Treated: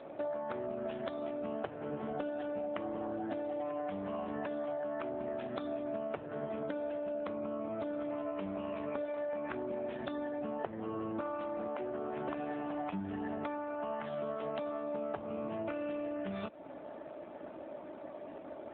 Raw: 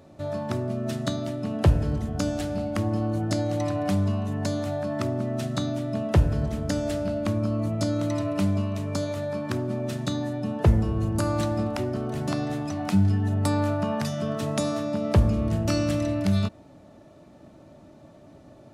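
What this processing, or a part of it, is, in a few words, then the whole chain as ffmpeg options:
voicemail: -af "highpass=400,lowpass=2600,acompressor=threshold=0.00708:ratio=12,volume=2.82" -ar 8000 -c:a libopencore_amrnb -b:a 7400

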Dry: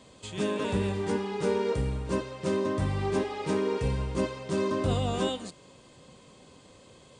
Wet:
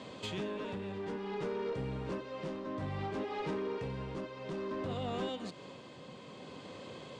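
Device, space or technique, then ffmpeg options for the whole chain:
AM radio: -filter_complex "[0:a]highpass=130,lowpass=4000,acompressor=threshold=0.00794:ratio=4,asoftclip=type=tanh:threshold=0.0126,tremolo=f=0.58:d=0.36,asettb=1/sr,asplit=3[s0][s1][s2];[s0]atrim=end=2.234[s3];[s1]atrim=start=2.23:end=3.25,asetpts=PTS-STARTPTS,afade=t=in:d=0.004:c=qsin,afade=t=out:st=1.016:d=0.004:c=qsin,asplit=2[s4][s5];[s5]adelay=19,volume=0.501[s6];[s4][s6]amix=inputs=2:normalize=0,atrim=end_sample=44982[s7];[s2]atrim=start=3.246[s8];[s3][s7]acrossfade=d=0.004:c1=hsin:c2=qsin[s9];[s9][s8]acrossfade=d=0.004:c1=qsin:c2=hsin,volume=2.51"

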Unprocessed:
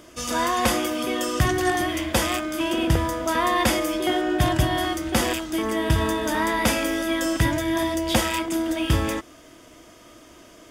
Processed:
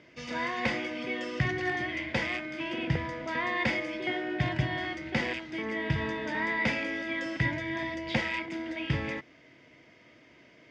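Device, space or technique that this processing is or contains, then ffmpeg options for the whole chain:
guitar cabinet: -af "highpass=110,equalizer=f=140:t=q:w=4:g=7,equalizer=f=330:t=q:w=4:g=-5,equalizer=f=680:t=q:w=4:g=-5,equalizer=f=1200:t=q:w=4:g=-10,equalizer=f=2100:t=q:w=4:g=10,equalizer=f=3400:t=q:w=4:g=-5,lowpass=f=4400:w=0.5412,lowpass=f=4400:w=1.3066,volume=0.447"

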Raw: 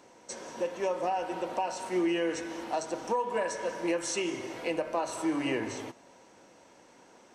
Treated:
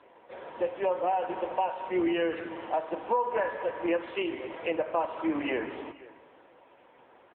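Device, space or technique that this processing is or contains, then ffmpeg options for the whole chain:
satellite phone: -af "highpass=330,lowpass=3300,aecho=1:1:487:0.1,volume=1.58" -ar 8000 -c:a libopencore_amrnb -b:a 6700

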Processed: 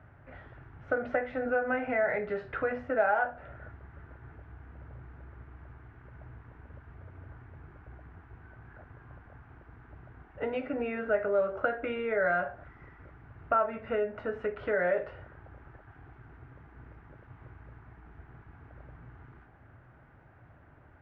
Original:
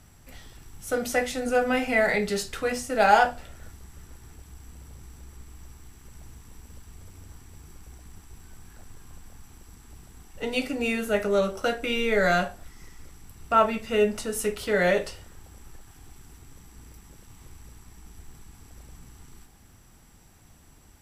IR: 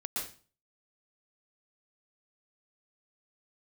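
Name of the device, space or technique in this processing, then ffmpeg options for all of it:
bass amplifier: -af "acompressor=threshold=0.0355:ratio=4,highpass=65,equalizer=f=120:t=q:w=4:g=6,equalizer=f=200:t=q:w=4:g=-9,equalizer=f=610:t=q:w=4:g=7,equalizer=f=1500:t=q:w=4:g=7,lowpass=f=2000:w=0.5412,lowpass=f=2000:w=1.3066"

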